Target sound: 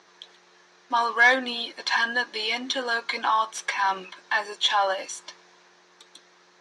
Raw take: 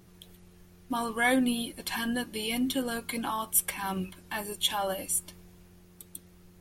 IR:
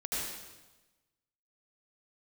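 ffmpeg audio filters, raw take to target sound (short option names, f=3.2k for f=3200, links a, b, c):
-filter_complex "[0:a]asplit=2[a][b];[b]highpass=f=720:p=1,volume=15dB,asoftclip=type=tanh:threshold=-9dB[c];[a][c]amix=inputs=2:normalize=0,lowpass=f=3.4k:p=1,volume=-6dB,highpass=430,equalizer=f=1k:t=q:w=4:g=5,equalizer=f=1.7k:t=q:w=4:g=5,equalizer=f=2.8k:t=q:w=4:g=-3,equalizer=f=4k:t=q:w=4:g=5,equalizer=f=6k:t=q:w=4:g=7,lowpass=f=6.3k:w=0.5412,lowpass=f=6.3k:w=1.3066"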